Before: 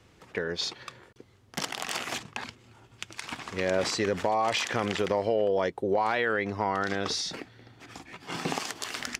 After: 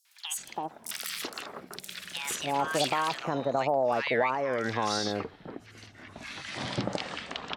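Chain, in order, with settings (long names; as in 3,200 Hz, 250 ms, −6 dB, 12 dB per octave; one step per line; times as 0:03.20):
gliding playback speed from 190% → 53%
three-band delay without the direct sound highs, mids, lows 50/380 ms, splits 1,400/5,900 Hz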